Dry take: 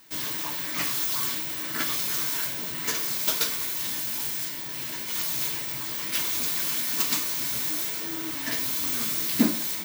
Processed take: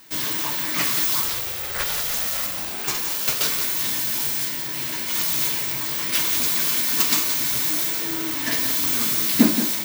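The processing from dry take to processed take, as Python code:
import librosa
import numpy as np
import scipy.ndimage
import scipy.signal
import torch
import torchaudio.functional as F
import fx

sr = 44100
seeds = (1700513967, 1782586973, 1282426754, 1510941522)

y = fx.ring_mod(x, sr, carrier_hz=fx.line((1.21, 170.0), (3.42, 860.0)), at=(1.21, 3.42), fade=0.02)
y = y + 10.0 ** (-9.0 / 20.0) * np.pad(y, (int(175 * sr / 1000.0), 0))[:len(y)]
y = y * librosa.db_to_amplitude(5.5)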